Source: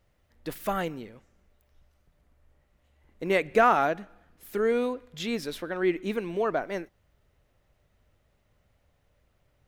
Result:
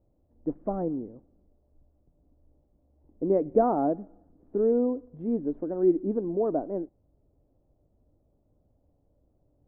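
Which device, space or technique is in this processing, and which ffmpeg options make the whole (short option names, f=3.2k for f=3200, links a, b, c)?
under water: -af "lowpass=f=750:w=0.5412,lowpass=f=750:w=1.3066,equalizer=f=290:t=o:w=0.47:g=10.5"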